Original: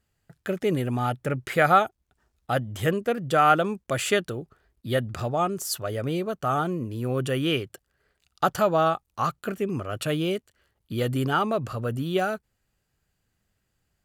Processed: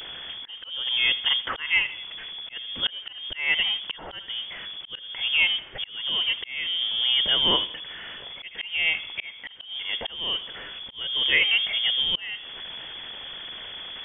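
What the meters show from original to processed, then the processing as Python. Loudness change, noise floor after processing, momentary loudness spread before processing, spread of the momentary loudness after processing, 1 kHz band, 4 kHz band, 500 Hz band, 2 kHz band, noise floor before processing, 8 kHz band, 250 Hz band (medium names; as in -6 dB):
+1.5 dB, -44 dBFS, 10 LU, 15 LU, -15.0 dB, +15.5 dB, -16.5 dB, +6.0 dB, -77 dBFS, under -40 dB, -17.0 dB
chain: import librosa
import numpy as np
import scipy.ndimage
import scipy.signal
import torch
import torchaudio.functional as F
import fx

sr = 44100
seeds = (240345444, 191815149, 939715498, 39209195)

p1 = x + 0.5 * 10.0 ** (-34.0 / 20.0) * np.sign(x)
p2 = fx.quant_companded(p1, sr, bits=4)
p3 = p1 + F.gain(torch.from_numpy(p2), -11.0).numpy()
p4 = fx.echo_feedback(p3, sr, ms=81, feedback_pct=44, wet_db=-19)
p5 = fx.freq_invert(p4, sr, carrier_hz=3400)
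y = fx.auto_swell(p5, sr, attack_ms=424.0)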